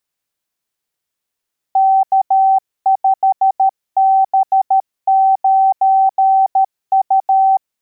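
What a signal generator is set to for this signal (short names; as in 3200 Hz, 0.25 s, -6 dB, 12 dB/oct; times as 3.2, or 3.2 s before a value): Morse "K5B9U" 13 wpm 771 Hz -8 dBFS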